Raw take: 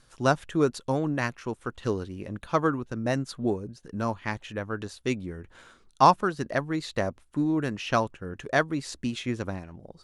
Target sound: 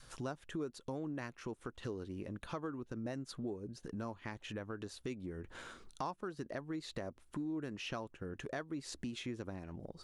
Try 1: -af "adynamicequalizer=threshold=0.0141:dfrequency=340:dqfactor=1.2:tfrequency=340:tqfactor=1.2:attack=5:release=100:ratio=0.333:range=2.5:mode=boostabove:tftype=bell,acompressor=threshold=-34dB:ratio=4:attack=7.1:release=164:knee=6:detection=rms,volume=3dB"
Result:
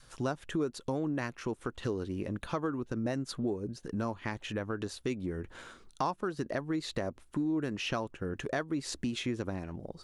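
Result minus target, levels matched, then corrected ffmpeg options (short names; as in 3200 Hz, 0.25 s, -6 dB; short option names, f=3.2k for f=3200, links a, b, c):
compressor: peak gain reduction -8 dB
-af "adynamicequalizer=threshold=0.0141:dfrequency=340:dqfactor=1.2:tfrequency=340:tqfactor=1.2:attack=5:release=100:ratio=0.333:range=2.5:mode=boostabove:tftype=bell,acompressor=threshold=-45dB:ratio=4:attack=7.1:release=164:knee=6:detection=rms,volume=3dB"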